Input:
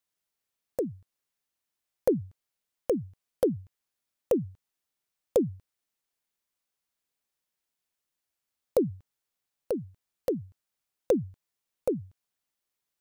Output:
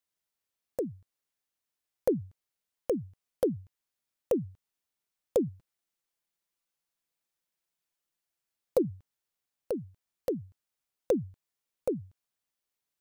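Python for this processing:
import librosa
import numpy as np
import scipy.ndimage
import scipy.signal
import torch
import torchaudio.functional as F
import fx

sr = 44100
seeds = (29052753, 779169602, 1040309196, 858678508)

y = fx.comb(x, sr, ms=5.9, depth=0.37, at=(5.47, 8.85))
y = y * librosa.db_to_amplitude(-2.5)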